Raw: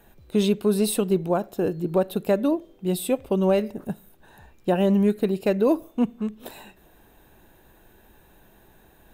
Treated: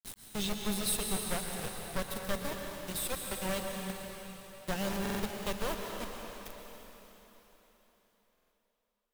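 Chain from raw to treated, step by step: one-sided fold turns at -16.5 dBFS; passive tone stack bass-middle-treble 10-0-10; reverse echo 0.813 s -13.5 dB; requantised 6-bit, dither none; low shelf 410 Hz +12 dB; on a send at -1.5 dB: reverb RT60 4.0 s, pre-delay 0.11 s; on the sum: stuck buffer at 5.01/8.33, samples 2048, times 3; gain -3.5 dB

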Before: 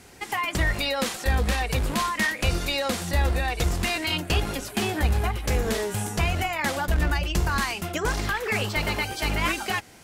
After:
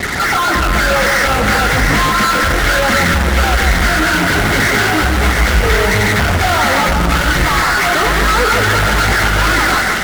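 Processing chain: nonlinear frequency compression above 1200 Hz 4:1; 7.45–8.06 HPF 400 Hz 12 dB/oct; in parallel at +2 dB: negative-ratio compressor -33 dBFS, ratio -1; on the sum: flange 0.33 Hz, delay 0.3 ms, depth 8.4 ms, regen -20%; fuzz box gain 42 dB, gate -40 dBFS; split-band echo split 1400 Hz, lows 0.153 s, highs 0.7 s, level -4 dB

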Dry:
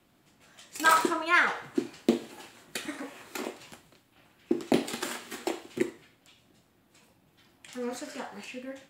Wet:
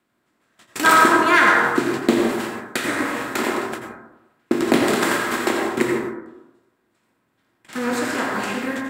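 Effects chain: per-bin compression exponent 0.6; gate -35 dBFS, range -31 dB; plate-style reverb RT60 0.97 s, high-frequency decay 0.25×, pre-delay 75 ms, DRR 1 dB; gain +5 dB

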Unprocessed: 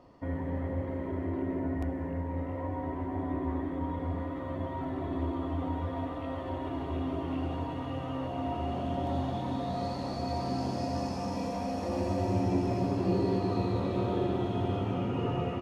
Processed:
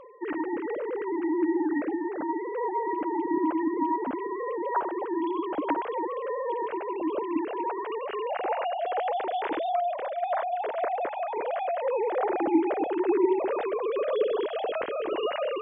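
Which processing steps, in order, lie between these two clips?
sine-wave speech; dynamic EQ 390 Hz, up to -4 dB, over -40 dBFS, Q 4.3; reverse; upward compressor, threshold -39 dBFS; reverse; gain +5 dB

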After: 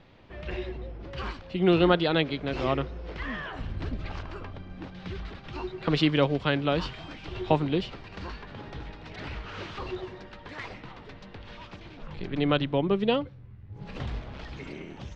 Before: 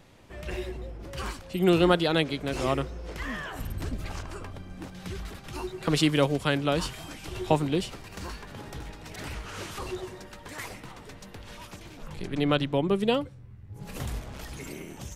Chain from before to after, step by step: LPF 4300 Hz 24 dB/oct

